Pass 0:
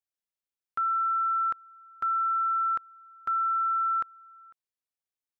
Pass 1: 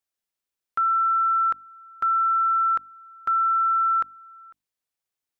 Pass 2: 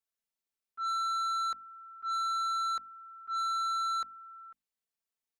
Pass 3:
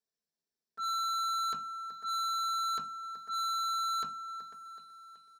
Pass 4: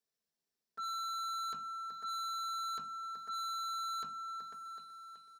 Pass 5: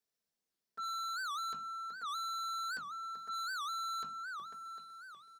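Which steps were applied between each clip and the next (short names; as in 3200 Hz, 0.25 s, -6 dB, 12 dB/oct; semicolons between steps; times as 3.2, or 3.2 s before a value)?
notches 50/100/150/200/250/300 Hz; gain +5.5 dB
comb 4.5 ms, depth 70%; auto swell 0.12 s; soft clip -23 dBFS, distortion -11 dB; gain -7.5 dB
feedback echo 0.376 s, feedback 58%, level -17 dB; reverb RT60 0.20 s, pre-delay 3 ms, DRR 6 dB; sample leveller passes 2; gain -5.5 dB
compressor 3:1, threshold -42 dBFS, peak gain reduction 7 dB; gain +1 dB
record warp 78 rpm, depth 250 cents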